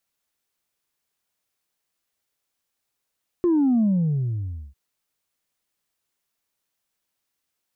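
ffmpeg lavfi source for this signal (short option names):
-f lavfi -i "aevalsrc='0.15*clip((1.3-t)/0.93,0,1)*tanh(1.06*sin(2*PI*360*1.3/log(65/360)*(exp(log(65/360)*t/1.3)-1)))/tanh(1.06)':d=1.3:s=44100"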